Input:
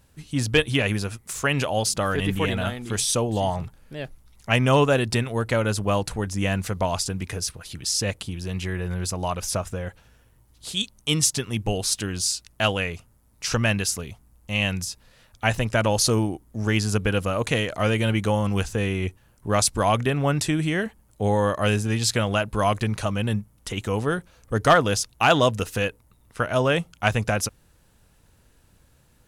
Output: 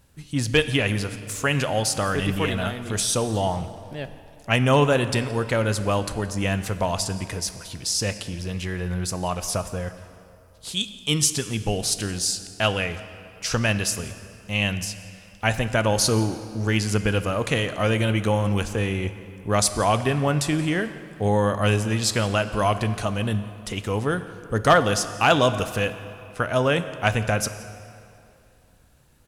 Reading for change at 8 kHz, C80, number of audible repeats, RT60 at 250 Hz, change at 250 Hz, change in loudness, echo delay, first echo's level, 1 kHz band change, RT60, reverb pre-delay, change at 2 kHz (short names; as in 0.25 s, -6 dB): 0.0 dB, 12.5 dB, 1, 2.4 s, +0.5 dB, +0.5 dB, 0.173 s, -23.0 dB, +0.5 dB, 2.6 s, 5 ms, +0.5 dB